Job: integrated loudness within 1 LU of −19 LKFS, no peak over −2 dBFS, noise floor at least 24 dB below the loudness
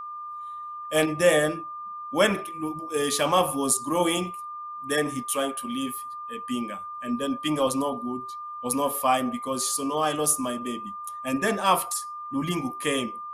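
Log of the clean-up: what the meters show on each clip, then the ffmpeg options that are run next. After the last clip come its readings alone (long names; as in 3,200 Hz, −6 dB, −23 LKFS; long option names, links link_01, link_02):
interfering tone 1,200 Hz; level of the tone −34 dBFS; integrated loudness −26.5 LKFS; sample peak −6.5 dBFS; target loudness −19.0 LKFS
→ -af "bandreject=frequency=1200:width=30"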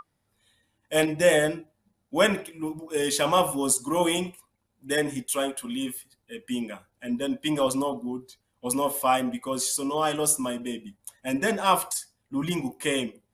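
interfering tone none found; integrated loudness −26.0 LKFS; sample peak −7.0 dBFS; target loudness −19.0 LKFS
→ -af "volume=7dB,alimiter=limit=-2dB:level=0:latency=1"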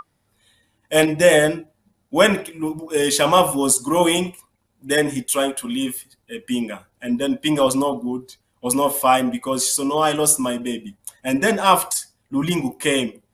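integrated loudness −19.5 LKFS; sample peak −2.0 dBFS; background noise floor −68 dBFS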